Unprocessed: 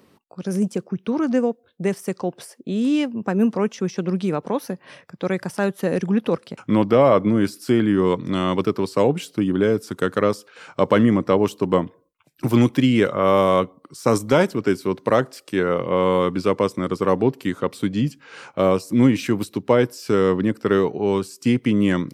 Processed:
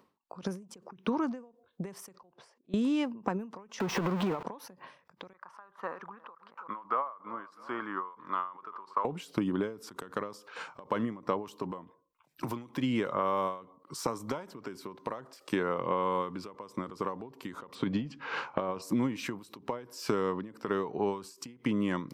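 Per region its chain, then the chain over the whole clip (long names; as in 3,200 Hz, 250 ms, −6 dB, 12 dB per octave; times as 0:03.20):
0:02.15–0:02.74: volume swells 688 ms + high-frequency loss of the air 110 metres
0:03.80–0:04.43: converter with a step at zero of −24.5 dBFS + bass and treble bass −3 dB, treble −11 dB + downward compressor 4 to 1, threshold −23 dBFS
0:05.33–0:09.05: resonant band-pass 1,200 Hz, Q 3.6 + repeating echo 326 ms, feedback 35%, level −22 dB
0:17.75–0:18.82: low-pass filter 4,000 Hz + compressor whose output falls as the input rises −21 dBFS, ratio −0.5
whole clip: graphic EQ with 15 bands 100 Hz −4 dB, 1,000 Hz +10 dB, 10,000 Hz −4 dB; downward compressor 10 to 1, threshold −26 dBFS; every ending faded ahead of time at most 130 dB per second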